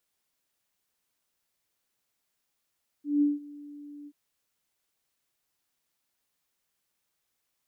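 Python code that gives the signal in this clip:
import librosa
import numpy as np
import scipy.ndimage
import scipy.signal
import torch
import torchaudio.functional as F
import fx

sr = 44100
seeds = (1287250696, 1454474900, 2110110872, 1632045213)

y = fx.adsr_tone(sr, wave='sine', hz=291.0, attack_ms=177.0, decay_ms=173.0, sustain_db=-22.5, held_s=1.03, release_ms=51.0, level_db=-19.0)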